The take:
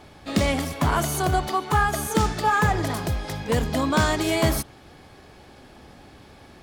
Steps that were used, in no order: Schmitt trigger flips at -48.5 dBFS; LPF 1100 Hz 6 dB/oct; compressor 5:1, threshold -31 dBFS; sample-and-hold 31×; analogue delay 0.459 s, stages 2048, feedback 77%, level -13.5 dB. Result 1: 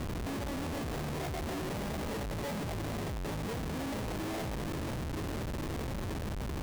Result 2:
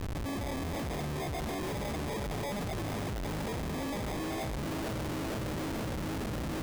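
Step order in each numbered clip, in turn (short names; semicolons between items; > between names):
compressor > analogue delay > sample-and-hold > LPF > Schmitt trigger; LPF > sample-and-hold > analogue delay > compressor > Schmitt trigger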